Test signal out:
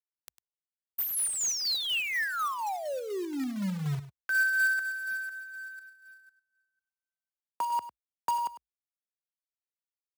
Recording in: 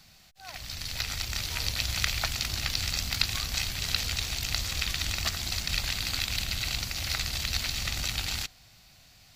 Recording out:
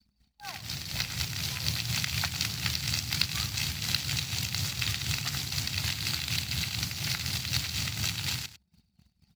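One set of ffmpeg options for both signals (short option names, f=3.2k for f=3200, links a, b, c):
-filter_complex "[0:a]afreqshift=54,adynamicequalizer=threshold=0.00501:dfrequency=500:dqfactor=0.84:tfrequency=500:tqfactor=0.84:attack=5:release=100:ratio=0.375:range=2.5:mode=cutabove:tftype=bell,asplit=2[a][b];[b]acompressor=threshold=-42dB:ratio=8,volume=-2dB[c];[a][c]amix=inputs=2:normalize=0,tremolo=f=4.1:d=0.51,anlmdn=0.0251,acrusher=bits=3:mode=log:mix=0:aa=0.000001,asplit=2[d][e];[e]aecho=0:1:101:0.2[f];[d][f]amix=inputs=2:normalize=0"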